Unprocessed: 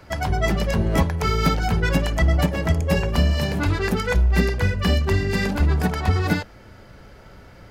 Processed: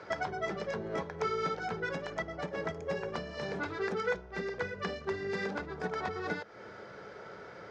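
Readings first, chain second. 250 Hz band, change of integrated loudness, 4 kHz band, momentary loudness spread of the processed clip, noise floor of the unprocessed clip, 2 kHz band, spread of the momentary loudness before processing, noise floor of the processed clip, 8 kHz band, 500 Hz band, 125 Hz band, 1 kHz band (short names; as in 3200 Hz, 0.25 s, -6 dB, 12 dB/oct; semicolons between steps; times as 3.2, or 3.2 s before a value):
-17.5 dB, -14.5 dB, -16.0 dB, 14 LU, -46 dBFS, -10.5 dB, 3 LU, -49 dBFS, -18.5 dB, -8.5 dB, -25.0 dB, -9.5 dB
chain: compressor 6:1, threshold -30 dBFS, peak gain reduction 16 dB; speaker cabinet 230–5700 Hz, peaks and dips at 260 Hz -8 dB, 440 Hz +7 dB, 1400 Hz +4 dB, 2800 Hz -7 dB, 4500 Hz -5 dB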